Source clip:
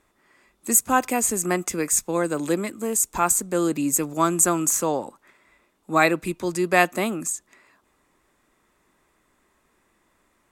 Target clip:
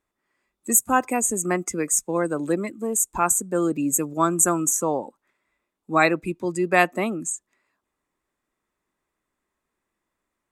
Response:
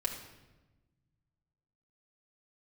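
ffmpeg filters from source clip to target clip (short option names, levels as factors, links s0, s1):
-af "afftdn=nr=15:nf=-32"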